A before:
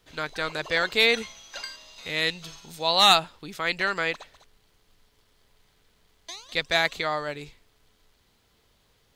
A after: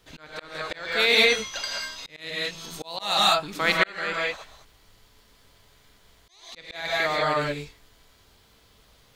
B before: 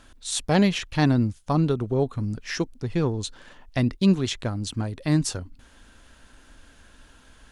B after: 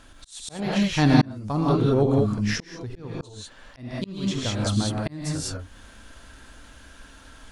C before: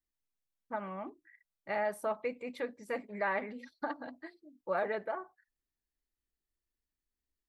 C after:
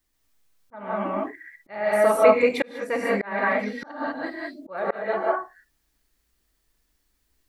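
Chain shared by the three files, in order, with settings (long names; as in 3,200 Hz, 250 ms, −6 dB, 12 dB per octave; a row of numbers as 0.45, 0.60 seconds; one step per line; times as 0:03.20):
reverb whose tail is shaped and stops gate 220 ms rising, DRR −1.5 dB
volume swells 653 ms
loudness normalisation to −24 LKFS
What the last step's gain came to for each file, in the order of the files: +3.5, +2.0, +16.0 decibels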